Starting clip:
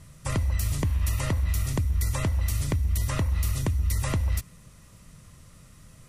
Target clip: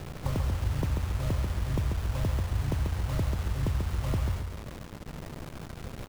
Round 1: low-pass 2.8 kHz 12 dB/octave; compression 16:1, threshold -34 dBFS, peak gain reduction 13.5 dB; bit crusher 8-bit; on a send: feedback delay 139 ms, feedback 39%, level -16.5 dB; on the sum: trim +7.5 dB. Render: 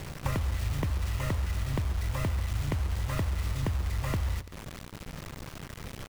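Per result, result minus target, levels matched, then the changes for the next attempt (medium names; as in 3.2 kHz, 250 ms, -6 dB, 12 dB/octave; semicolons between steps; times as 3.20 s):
echo-to-direct -11.5 dB; 2 kHz band +4.0 dB
change: feedback delay 139 ms, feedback 39%, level -5 dB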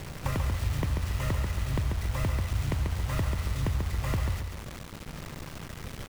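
2 kHz band +4.5 dB
change: low-pass 830 Hz 12 dB/octave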